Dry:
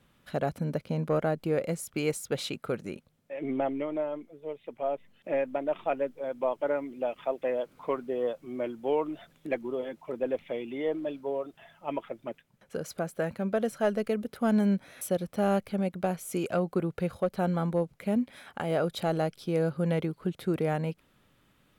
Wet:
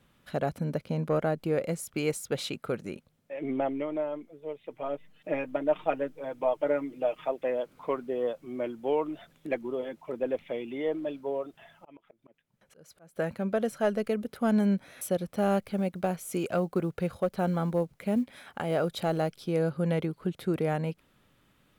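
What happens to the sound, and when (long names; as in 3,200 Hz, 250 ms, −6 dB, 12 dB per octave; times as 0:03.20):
0:04.70–0:07.29: comb filter 6.5 ms, depth 67%
0:11.35–0:13.16: volume swells 606 ms
0:15.37–0:19.47: log-companded quantiser 8 bits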